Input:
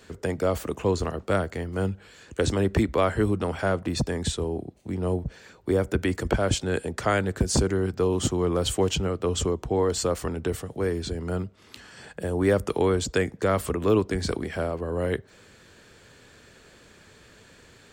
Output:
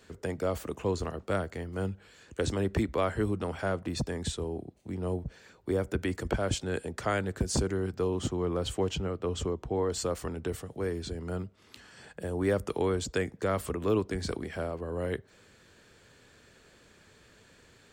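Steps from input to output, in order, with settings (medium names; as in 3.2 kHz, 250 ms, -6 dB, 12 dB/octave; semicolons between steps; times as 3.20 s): 8.10–9.92 s: treble shelf 5.6 kHz -8.5 dB; trim -6 dB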